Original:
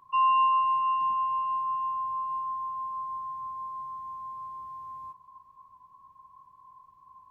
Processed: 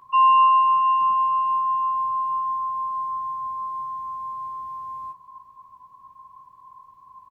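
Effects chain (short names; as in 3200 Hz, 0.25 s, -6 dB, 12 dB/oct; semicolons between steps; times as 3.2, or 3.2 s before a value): low shelf 190 Hz -3 dB; doubler 16 ms -11 dB; gain +6.5 dB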